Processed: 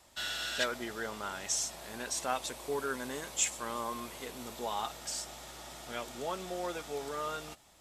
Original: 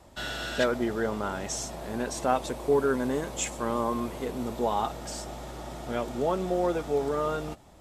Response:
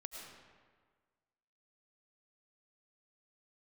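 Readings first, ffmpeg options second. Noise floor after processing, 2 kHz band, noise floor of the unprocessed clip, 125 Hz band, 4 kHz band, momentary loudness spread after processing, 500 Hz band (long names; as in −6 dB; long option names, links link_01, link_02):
−62 dBFS, −3.0 dB, −52 dBFS, −14.0 dB, +1.0 dB, 10 LU, −11.5 dB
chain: -af "tiltshelf=frequency=1100:gain=-8.5,volume=-6dB"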